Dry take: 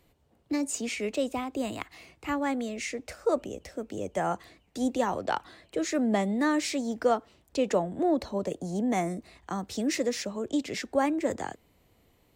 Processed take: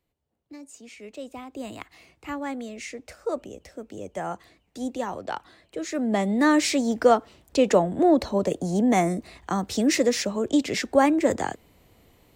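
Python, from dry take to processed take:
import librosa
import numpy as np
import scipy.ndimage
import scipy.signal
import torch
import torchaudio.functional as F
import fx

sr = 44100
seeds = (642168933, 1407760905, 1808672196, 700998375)

y = fx.gain(x, sr, db=fx.line((0.78, -14.0), (1.74, -2.5), (5.81, -2.5), (6.51, 7.0)))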